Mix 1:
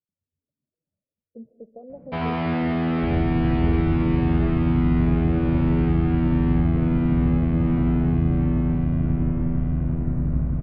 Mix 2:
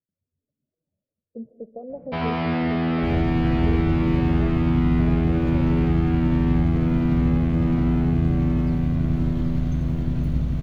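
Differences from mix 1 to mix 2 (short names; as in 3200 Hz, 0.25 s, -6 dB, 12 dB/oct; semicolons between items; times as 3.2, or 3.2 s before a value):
speech +5.0 dB; second sound: remove LPF 1500 Hz 24 dB/oct; master: remove air absorption 130 m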